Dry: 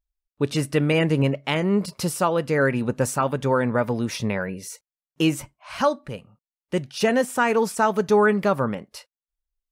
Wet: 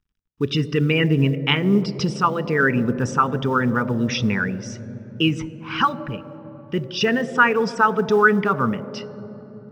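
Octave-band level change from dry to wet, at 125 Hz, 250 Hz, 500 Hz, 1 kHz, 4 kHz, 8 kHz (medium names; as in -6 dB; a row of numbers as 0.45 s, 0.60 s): +3.5 dB, +3.0 dB, -1.0 dB, +3.5 dB, +6.0 dB, -5.5 dB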